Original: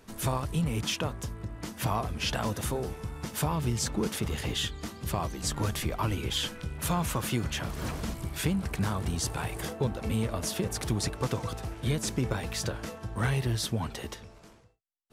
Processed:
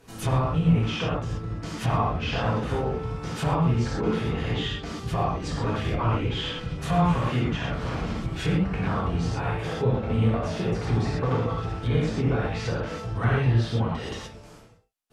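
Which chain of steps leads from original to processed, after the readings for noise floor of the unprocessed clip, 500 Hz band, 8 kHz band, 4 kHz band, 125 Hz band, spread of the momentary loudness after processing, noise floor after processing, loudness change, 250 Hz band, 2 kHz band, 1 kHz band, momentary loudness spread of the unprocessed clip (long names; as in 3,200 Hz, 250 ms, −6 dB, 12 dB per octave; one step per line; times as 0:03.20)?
−54 dBFS, +6.5 dB, −10.0 dB, −0.5 dB, +7.0 dB, 8 LU, −47 dBFS, +5.5 dB, +6.0 dB, +4.0 dB, +6.5 dB, 7 LU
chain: reverb whose tail is shaped and stops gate 150 ms flat, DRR −6.5 dB
treble cut that deepens with the level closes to 2,500 Hz, closed at −21.5 dBFS
level −1.5 dB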